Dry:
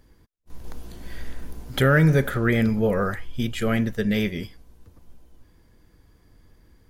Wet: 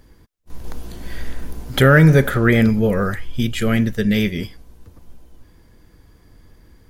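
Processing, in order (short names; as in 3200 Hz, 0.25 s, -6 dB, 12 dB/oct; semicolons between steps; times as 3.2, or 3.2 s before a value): 2.7–4.39 dynamic EQ 810 Hz, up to -6 dB, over -38 dBFS, Q 0.71; gain +6.5 dB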